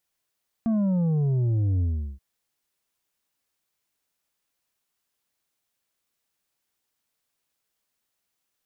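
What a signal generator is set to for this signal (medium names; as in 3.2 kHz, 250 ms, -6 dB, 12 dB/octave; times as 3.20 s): sub drop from 230 Hz, over 1.53 s, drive 6 dB, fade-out 0.38 s, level -21 dB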